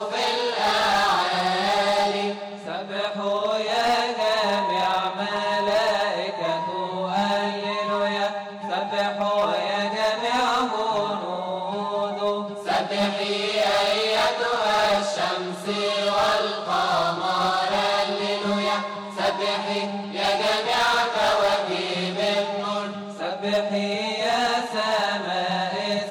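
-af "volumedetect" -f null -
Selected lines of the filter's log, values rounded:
mean_volume: -23.7 dB
max_volume: -16.0 dB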